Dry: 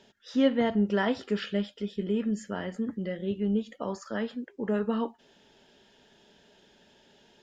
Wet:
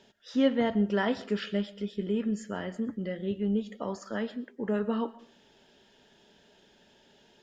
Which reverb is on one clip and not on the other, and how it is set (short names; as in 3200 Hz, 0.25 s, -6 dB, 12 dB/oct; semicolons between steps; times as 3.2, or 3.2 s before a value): digital reverb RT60 0.46 s, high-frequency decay 0.55×, pre-delay 80 ms, DRR 18.5 dB; gain -1 dB